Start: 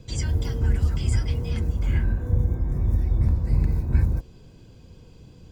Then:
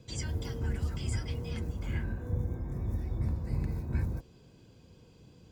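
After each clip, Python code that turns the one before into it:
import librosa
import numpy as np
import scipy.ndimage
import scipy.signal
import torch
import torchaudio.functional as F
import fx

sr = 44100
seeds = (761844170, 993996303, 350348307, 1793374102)

y = fx.highpass(x, sr, hz=120.0, slope=6)
y = y * 10.0 ** (-5.5 / 20.0)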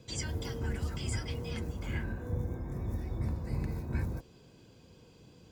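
y = fx.low_shelf(x, sr, hz=190.0, db=-6.0)
y = y * 10.0 ** (2.5 / 20.0)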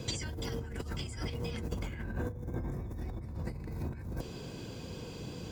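y = fx.over_compress(x, sr, threshold_db=-44.0, ratio=-1.0)
y = y * 10.0 ** (6.0 / 20.0)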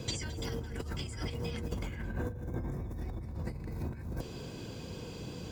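y = x + 10.0 ** (-16.0 / 20.0) * np.pad(x, (int(217 * sr / 1000.0), 0))[:len(x)]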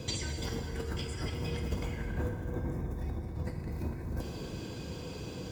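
y = fx.rev_plate(x, sr, seeds[0], rt60_s=2.4, hf_ratio=0.75, predelay_ms=0, drr_db=2.5)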